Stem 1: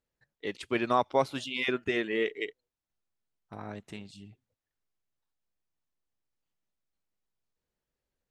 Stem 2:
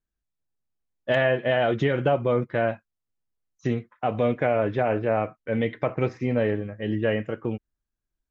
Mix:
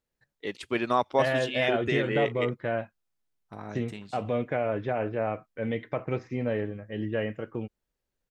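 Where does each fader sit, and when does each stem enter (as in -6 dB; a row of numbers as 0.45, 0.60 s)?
+1.0, -5.5 dB; 0.00, 0.10 s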